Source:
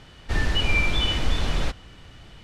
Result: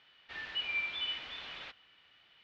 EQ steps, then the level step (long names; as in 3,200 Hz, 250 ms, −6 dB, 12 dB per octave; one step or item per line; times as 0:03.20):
low-pass filter 3,200 Hz 24 dB per octave
first difference
0.0 dB